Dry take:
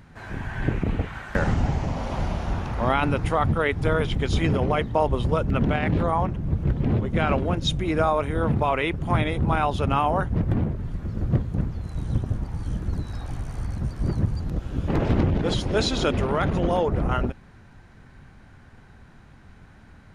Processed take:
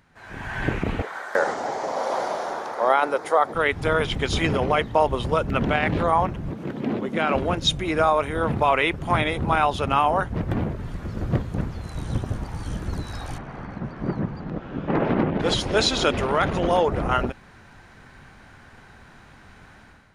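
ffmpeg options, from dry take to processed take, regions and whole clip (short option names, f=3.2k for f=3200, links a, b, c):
-filter_complex "[0:a]asettb=1/sr,asplit=3[a][b][c];[a]atrim=end=1.024[d];[b]atrim=start=1.02:end=3.55,asetpts=PTS-STARTPTS,afade=t=in:d=0.004:c=qsin,afade=t=out:st=2.526:d=0.004:c=qsin,highpass=f=470:t=q:w=1.7,equalizer=f=2.7k:t=o:w=0.52:g=-12[e];[c]atrim=start=3.546[f];[d][e]acrossfade=d=0.004:c1=hsin:c2=qsin[g];[g][f]acrossfade=d=0.004:c1=qsin:c2=hsin,asettb=1/sr,asplit=3[h][i][j];[h]atrim=end=6.514[k];[i]atrim=start=6.51:end=7.35,asetpts=PTS-STARTPTS,afade=t=in:d=0.004:c=qsin,afade=t=out:st=0.836:d=0.004:c=qsin,acompressor=threshold=-27dB:ratio=1.5:attack=3.2:release=140:knee=1:detection=peak,highpass=f=230:t=q:w=1.6[l];[j]atrim=start=7.346[m];[k][l]acrossfade=d=0.004:c1=hsin:c2=qsin[n];[n][m]acrossfade=d=0.004:c1=qsin:c2=hsin,asettb=1/sr,asplit=3[o][p][q];[o]atrim=end=13.384[r];[p]atrim=start=13.38:end=15.4,asetpts=PTS-STARTPTS,afade=t=in:d=0.004:c=qsin,afade=t=out:st=2.016:d=0.004:c=qsin,lowpass=2.1k,lowshelf=f=120:t=q:w=1.5:g=-9.5[s];[q]atrim=start=15.396[t];[r][s]acrossfade=d=0.004:c1=hsin:c2=qsin[u];[u][t]acrossfade=d=0.004:c1=qsin:c2=hsin,lowshelf=f=330:g=-10.5,dynaudnorm=f=110:g=7:m=12.5dB,volume=-5dB"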